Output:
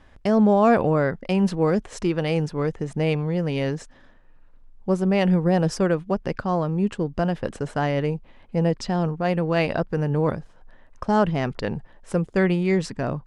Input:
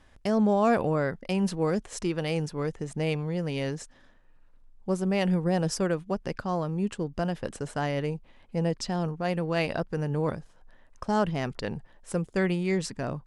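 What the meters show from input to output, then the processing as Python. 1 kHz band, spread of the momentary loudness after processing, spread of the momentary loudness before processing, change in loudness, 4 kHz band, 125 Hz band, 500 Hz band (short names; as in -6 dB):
+5.5 dB, 9 LU, 9 LU, +6.0 dB, +2.0 dB, +6.0 dB, +6.0 dB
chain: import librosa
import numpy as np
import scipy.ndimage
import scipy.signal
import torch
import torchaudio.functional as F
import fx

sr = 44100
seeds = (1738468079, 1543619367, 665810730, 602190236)

y = fx.lowpass(x, sr, hz=3100.0, slope=6)
y = y * 10.0 ** (6.0 / 20.0)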